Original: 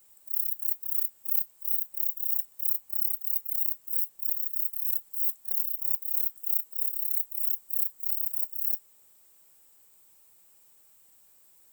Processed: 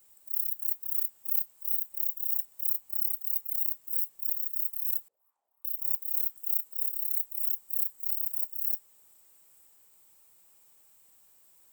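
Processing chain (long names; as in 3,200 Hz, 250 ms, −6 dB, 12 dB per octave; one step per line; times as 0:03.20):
echo through a band-pass that steps 308 ms, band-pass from 940 Hz, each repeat 1.4 octaves, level −3 dB
0:05.08–0:05.65: envelope filter 470–1,100 Hz, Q 4.7, up, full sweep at −23 dBFS
level −1.5 dB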